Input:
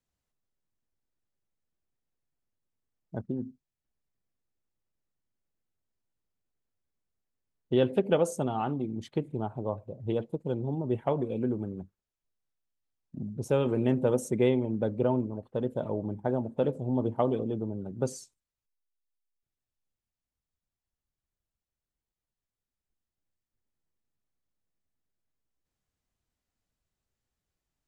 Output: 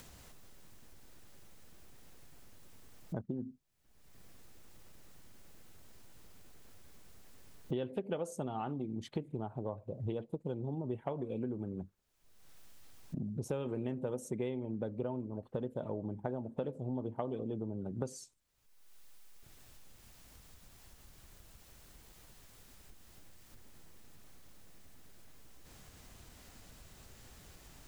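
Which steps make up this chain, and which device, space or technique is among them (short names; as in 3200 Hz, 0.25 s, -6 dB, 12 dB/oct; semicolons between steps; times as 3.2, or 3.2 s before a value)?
upward and downward compression (upward compressor, threshold -39 dBFS; compressor 5:1, threshold -41 dBFS, peak gain reduction 19 dB); gain +5 dB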